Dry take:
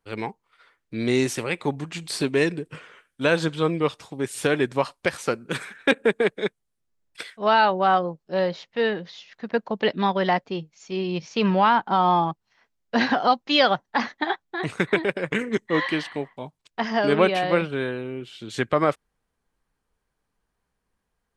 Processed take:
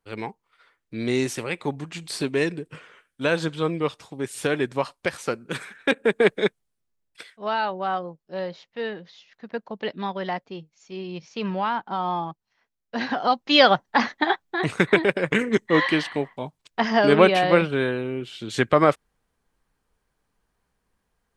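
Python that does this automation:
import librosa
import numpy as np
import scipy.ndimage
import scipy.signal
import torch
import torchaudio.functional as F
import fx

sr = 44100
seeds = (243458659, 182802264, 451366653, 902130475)

y = fx.gain(x, sr, db=fx.line((6.02, -2.0), (6.33, 5.5), (7.27, -7.0), (12.98, -7.0), (13.6, 3.5)))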